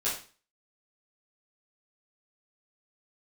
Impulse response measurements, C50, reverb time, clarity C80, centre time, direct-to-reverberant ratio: 5.5 dB, 0.40 s, 11.0 dB, 34 ms, -10.5 dB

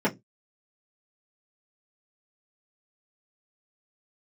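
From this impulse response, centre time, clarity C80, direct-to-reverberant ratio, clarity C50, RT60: 12 ms, 31.5 dB, -8.0 dB, 21.5 dB, not exponential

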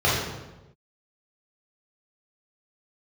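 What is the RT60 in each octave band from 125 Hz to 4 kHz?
1.3, 1.1, 1.1, 1.0, 0.85, 0.75 s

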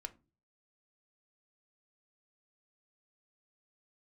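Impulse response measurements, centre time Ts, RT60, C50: 4 ms, not exponential, 20.0 dB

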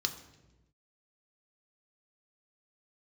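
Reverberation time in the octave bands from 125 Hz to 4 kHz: 1.4, 1.3, 1.2, 0.90, 0.90, 0.85 s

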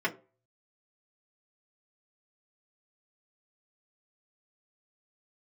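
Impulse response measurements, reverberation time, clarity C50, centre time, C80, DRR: 0.35 s, 18.5 dB, 8 ms, 22.0 dB, -5.0 dB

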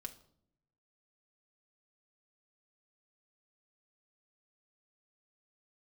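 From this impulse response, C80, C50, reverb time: 18.5 dB, 15.0 dB, not exponential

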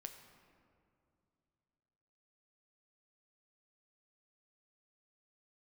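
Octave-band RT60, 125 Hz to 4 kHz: 3.3, 3.0, 2.7, 2.4, 1.8, 1.2 s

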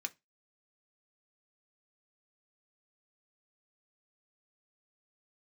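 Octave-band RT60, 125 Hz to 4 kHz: 0.25, 0.25, 0.20, 0.20, 0.20, 0.20 s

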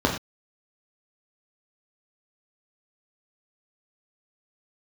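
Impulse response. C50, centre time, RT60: 7.0 dB, 24 ms, not exponential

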